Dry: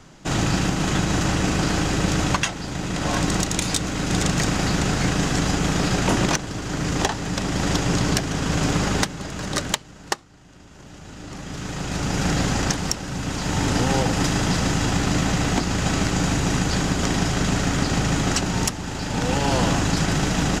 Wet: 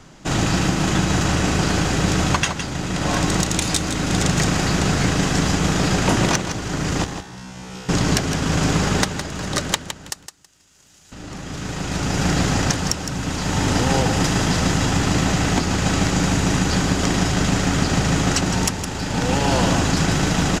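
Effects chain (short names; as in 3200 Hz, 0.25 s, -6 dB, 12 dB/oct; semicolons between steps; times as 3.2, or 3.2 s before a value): 7.04–7.89 resonator 63 Hz, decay 1.2 s, harmonics all, mix 100%; 10.1–11.12 pre-emphasis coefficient 0.9; on a send: feedback echo 0.162 s, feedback 19%, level -9 dB; on the sum: gain +2 dB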